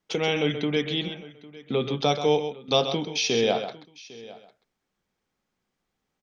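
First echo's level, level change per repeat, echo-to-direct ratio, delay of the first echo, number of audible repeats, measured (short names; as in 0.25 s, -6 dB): -9.5 dB, no steady repeat, -9.0 dB, 0.131 s, 3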